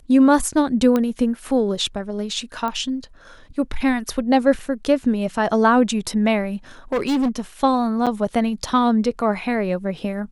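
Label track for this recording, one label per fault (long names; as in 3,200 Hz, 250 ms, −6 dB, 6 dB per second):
0.960000	0.960000	click −9 dBFS
2.680000	2.680000	click −14 dBFS
4.590000	4.590000	drop-out 3.2 ms
6.920000	7.400000	clipping −16.5 dBFS
8.060000	8.070000	drop-out 6.9 ms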